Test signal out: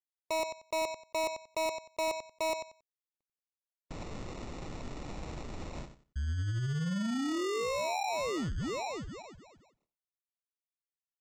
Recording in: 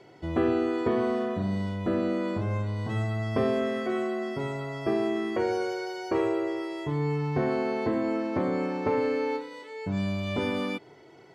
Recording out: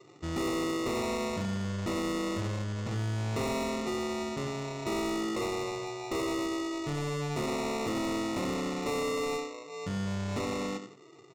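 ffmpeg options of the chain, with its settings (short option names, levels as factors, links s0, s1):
-filter_complex "[0:a]afftdn=nr=17:nf=-49,aemphasis=mode=reproduction:type=50kf,asplit=2[s0][s1];[s1]adelay=91,lowpass=f=1100:p=1,volume=0.299,asplit=2[s2][s3];[s3]adelay=91,lowpass=f=1100:p=1,volume=0.23,asplit=2[s4][s5];[s5]adelay=91,lowpass=f=1100:p=1,volume=0.23[s6];[s2][s4][s6]amix=inputs=3:normalize=0[s7];[s0][s7]amix=inputs=2:normalize=0,adynamicsmooth=sensitivity=2.5:basefreq=1400,aresample=16000,acrusher=samples=10:mix=1:aa=0.000001,aresample=44100,asoftclip=type=tanh:threshold=0.0376"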